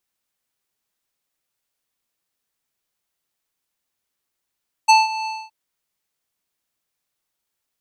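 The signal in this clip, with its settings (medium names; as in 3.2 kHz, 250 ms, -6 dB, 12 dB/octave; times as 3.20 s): synth note square A5 12 dB/octave, low-pass 4.5 kHz, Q 1.6, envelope 1 oct, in 0.05 s, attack 16 ms, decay 0.18 s, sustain -16 dB, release 0.24 s, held 0.38 s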